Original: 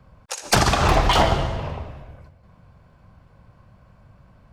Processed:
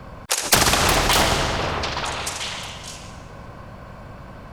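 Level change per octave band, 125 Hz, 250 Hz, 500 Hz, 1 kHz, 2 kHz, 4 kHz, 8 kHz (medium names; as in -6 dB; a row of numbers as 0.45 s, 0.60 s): -3.5 dB, 0.0 dB, -0.5 dB, -0.5 dB, +4.5 dB, +5.0 dB, +8.5 dB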